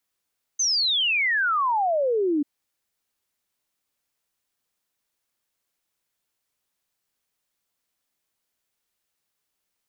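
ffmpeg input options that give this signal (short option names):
-f lavfi -i "aevalsrc='0.106*clip(min(t,1.84-t)/0.01,0,1)*sin(2*PI*6400*1.84/log(280/6400)*(exp(log(280/6400)*t/1.84)-1))':d=1.84:s=44100"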